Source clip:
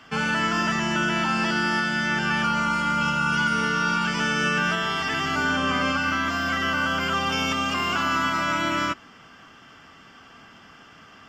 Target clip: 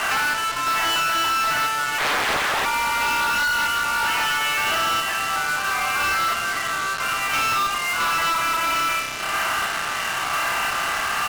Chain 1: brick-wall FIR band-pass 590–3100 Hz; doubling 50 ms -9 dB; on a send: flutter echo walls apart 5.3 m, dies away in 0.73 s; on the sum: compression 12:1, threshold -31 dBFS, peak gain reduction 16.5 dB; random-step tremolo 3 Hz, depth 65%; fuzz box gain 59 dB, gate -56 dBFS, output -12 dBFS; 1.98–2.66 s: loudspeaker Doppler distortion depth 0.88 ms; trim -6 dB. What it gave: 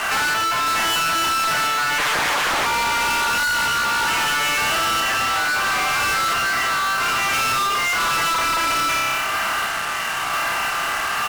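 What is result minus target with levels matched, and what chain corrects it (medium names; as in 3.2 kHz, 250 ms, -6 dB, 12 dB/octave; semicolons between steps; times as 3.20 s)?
compression: peak gain reduction -11 dB
brick-wall FIR band-pass 590–3100 Hz; doubling 50 ms -9 dB; on a send: flutter echo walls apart 5.3 m, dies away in 0.73 s; on the sum: compression 12:1, threshold -43 dBFS, peak gain reduction 27.5 dB; random-step tremolo 3 Hz, depth 65%; fuzz box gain 59 dB, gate -56 dBFS, output -12 dBFS; 1.98–2.66 s: loudspeaker Doppler distortion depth 0.88 ms; trim -6 dB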